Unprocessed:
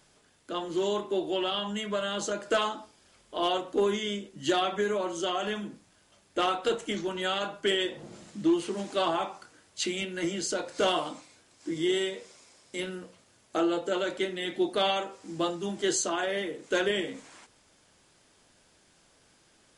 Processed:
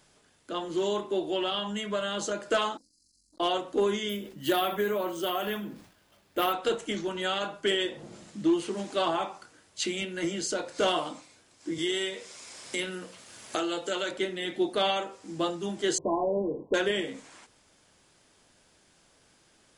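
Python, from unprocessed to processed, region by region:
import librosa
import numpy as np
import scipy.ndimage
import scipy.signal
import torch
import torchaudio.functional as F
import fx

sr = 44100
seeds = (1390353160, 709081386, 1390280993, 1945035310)

y = fx.chain(x, sr, fx.brickwall_bandstop(low_hz=330.0, high_hz=4000.0),
    fx.peak_eq(hz=140.0, db=-14.5, octaves=1.8),
    fx.transformer_sat(knee_hz=1300.0), at=(2.77, 3.4))
y = fx.chain(y, sr, fx.lowpass(hz=5700.0, slope=12),
    fx.resample_bad(factor=3, down='none', up='hold'),
    fx.sustainer(db_per_s=99.0), at=(4.09, 6.53))
y = fx.chain(y, sr, fx.tilt_shelf(db=-4.5, hz=1300.0),
    fx.band_squash(depth_pct=70), at=(11.78, 14.11))
y = fx.chain(y, sr, fx.low_shelf(hz=140.0, db=9.5),
    fx.leveller(passes=1),
    fx.brickwall_lowpass(high_hz=1100.0), at=(15.98, 16.74))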